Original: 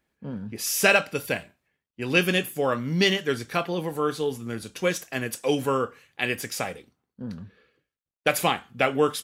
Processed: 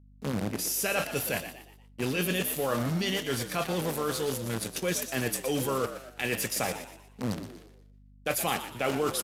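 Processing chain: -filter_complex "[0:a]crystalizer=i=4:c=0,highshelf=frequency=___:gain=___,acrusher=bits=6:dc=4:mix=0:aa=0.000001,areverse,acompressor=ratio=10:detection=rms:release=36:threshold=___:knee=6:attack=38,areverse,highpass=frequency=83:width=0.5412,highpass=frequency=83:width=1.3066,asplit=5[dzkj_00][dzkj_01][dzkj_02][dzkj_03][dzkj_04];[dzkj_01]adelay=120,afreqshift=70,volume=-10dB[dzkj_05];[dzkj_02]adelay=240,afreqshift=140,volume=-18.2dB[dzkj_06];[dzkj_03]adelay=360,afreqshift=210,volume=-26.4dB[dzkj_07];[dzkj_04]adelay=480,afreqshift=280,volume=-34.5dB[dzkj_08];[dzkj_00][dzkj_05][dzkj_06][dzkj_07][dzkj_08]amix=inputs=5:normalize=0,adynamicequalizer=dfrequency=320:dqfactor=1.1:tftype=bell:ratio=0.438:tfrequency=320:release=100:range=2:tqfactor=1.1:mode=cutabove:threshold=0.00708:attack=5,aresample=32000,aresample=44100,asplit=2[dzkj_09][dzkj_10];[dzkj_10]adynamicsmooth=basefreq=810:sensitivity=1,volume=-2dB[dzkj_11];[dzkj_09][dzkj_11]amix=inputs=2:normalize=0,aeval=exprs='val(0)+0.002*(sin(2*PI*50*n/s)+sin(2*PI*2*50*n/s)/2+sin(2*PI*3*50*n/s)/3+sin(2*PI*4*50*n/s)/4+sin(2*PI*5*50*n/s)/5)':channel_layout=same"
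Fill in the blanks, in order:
3.9k, -6.5, -32dB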